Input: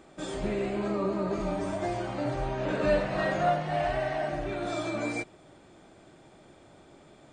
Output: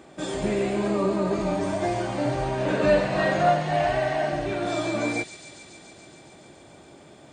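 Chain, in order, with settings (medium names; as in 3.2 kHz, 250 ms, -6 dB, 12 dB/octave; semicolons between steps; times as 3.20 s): high-pass 61 Hz; band-stop 1.3 kHz, Q 15; feedback echo behind a high-pass 141 ms, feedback 81%, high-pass 4.1 kHz, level -5.5 dB; trim +5.5 dB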